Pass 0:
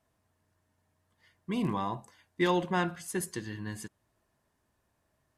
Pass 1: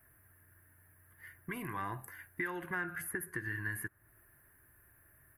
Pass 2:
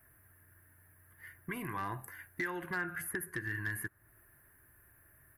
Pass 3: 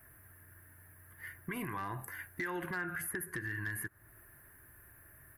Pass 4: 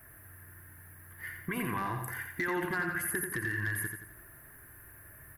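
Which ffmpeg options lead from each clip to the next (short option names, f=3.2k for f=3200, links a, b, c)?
-filter_complex "[0:a]acompressor=threshold=-34dB:ratio=6,firequalizer=gain_entry='entry(120,0);entry(210,-12);entry(330,-2);entry(510,-10);entry(970,-9);entry(1600,7);entry(3400,-18);entry(7200,-16);entry(11000,13)':delay=0.05:min_phase=1,acrossover=split=860|1800[a][b][c];[a]acompressor=threshold=-53dB:ratio=4[d];[b]acompressor=threshold=-49dB:ratio=4[e];[c]acompressor=threshold=-57dB:ratio=4[f];[d][e][f]amix=inputs=3:normalize=0,volume=10.5dB"
-af "asoftclip=type=hard:threshold=-29dB,volume=1dB"
-af "alimiter=level_in=11dB:limit=-24dB:level=0:latency=1:release=103,volume=-11dB,volume=5dB"
-af "aecho=1:1:87|174|261|348|435:0.501|0.221|0.097|0.0427|0.0188,volume=4.5dB"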